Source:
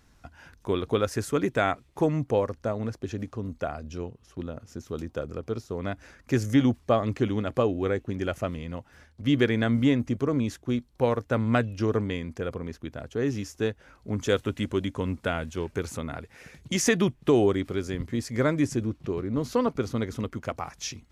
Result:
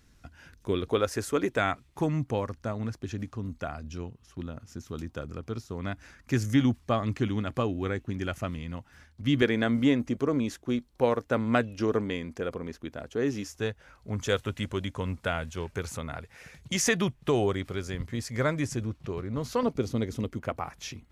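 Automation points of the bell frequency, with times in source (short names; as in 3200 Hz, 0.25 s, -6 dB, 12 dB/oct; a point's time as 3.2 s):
bell -7.5 dB 1.2 oct
850 Hz
from 0.88 s 150 Hz
from 1.59 s 500 Hz
from 9.42 s 100 Hz
from 13.47 s 300 Hz
from 19.63 s 1300 Hz
from 20.39 s 6000 Hz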